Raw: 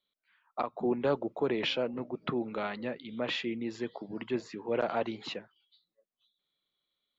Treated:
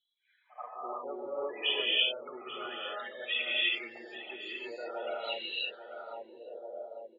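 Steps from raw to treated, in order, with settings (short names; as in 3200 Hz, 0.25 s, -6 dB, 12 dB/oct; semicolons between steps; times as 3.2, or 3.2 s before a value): pre-echo 80 ms -17 dB; loudest bins only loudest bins 16; resonant low shelf 300 Hz -8.5 dB, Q 1.5; on a send: feedback echo 0.839 s, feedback 32%, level -15 dB; on the sum: non-linear reverb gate 0.38 s rising, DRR -6.5 dB; band-pass sweep 2800 Hz -> 600 Hz, 5.6–6.49; gain +7 dB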